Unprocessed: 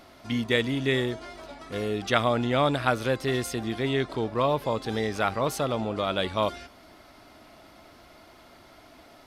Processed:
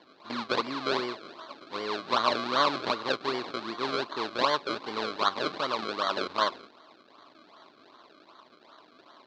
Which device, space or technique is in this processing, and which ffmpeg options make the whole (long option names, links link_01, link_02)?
circuit-bent sampling toy: -af "acrusher=samples=33:mix=1:aa=0.000001:lfo=1:lforange=33:lforate=2.6,highpass=400,equalizer=frequency=500:width_type=q:width=4:gain=-5,equalizer=frequency=730:width_type=q:width=4:gain=-6,equalizer=frequency=1100:width_type=q:width=4:gain=8,equalizer=frequency=1900:width_type=q:width=4:gain=-5,equalizer=frequency=2800:width_type=q:width=4:gain=-3,equalizer=frequency=4100:width_type=q:width=4:gain=9,lowpass=frequency=4500:width=0.5412,lowpass=frequency=4500:width=1.3066"